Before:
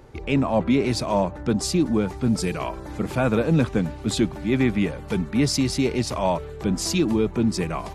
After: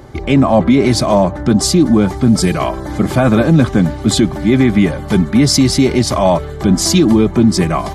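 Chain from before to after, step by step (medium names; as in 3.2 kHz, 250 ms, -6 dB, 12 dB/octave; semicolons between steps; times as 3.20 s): band-stop 2.6 kHz, Q 7.7; comb of notches 470 Hz; loudness maximiser +14 dB; trim -1 dB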